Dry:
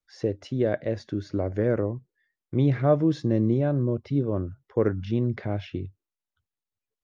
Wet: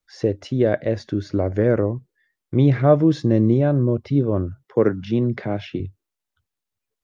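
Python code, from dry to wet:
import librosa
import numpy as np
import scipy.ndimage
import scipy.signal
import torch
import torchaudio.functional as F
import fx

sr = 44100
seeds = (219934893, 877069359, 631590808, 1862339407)

y = fx.highpass(x, sr, hz=120.0, slope=24, at=(4.65, 5.8))
y = F.gain(torch.from_numpy(y), 6.0).numpy()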